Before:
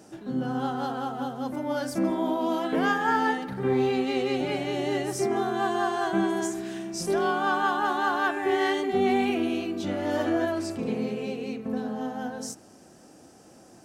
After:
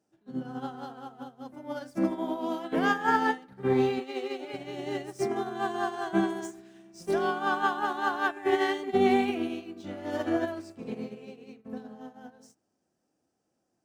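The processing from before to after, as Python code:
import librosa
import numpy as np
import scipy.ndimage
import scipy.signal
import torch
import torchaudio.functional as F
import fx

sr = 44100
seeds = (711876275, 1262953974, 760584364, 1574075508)

y = scipy.signal.medfilt(x, 3)
y = fx.highpass(y, sr, hz=290.0, slope=24, at=(3.99, 4.52), fade=0.02)
y = fx.upward_expand(y, sr, threshold_db=-40.0, expansion=2.5)
y = y * 10.0 ** (2.0 / 20.0)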